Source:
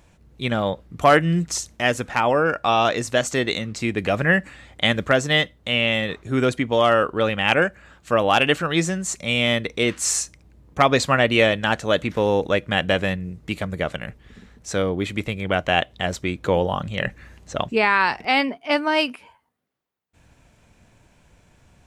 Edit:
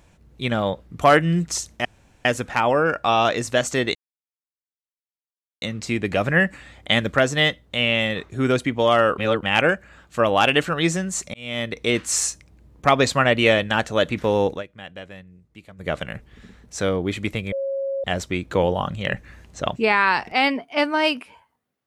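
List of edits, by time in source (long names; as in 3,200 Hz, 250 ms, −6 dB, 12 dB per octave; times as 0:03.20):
0:01.85: splice in room tone 0.40 s
0:03.55: splice in silence 1.67 s
0:07.11–0:07.36: reverse
0:09.27–0:09.77: fade in
0:12.42–0:13.84: duck −17.5 dB, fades 0.14 s
0:15.45–0:15.97: beep over 546 Hz −22.5 dBFS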